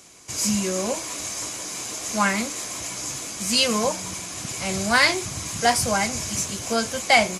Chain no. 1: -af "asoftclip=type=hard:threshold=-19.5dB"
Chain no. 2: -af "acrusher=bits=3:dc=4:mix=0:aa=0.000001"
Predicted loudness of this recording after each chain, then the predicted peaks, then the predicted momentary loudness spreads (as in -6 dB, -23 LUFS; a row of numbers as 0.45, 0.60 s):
-25.5, -25.5 LUFS; -19.5, -4.5 dBFS; 7, 14 LU